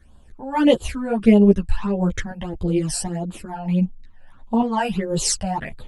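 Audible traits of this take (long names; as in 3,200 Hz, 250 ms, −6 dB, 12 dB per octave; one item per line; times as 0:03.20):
phaser sweep stages 12, 1.6 Hz, lowest notch 350–2,000 Hz
tremolo saw up 1.3 Hz, depth 50%
a shimmering, thickened sound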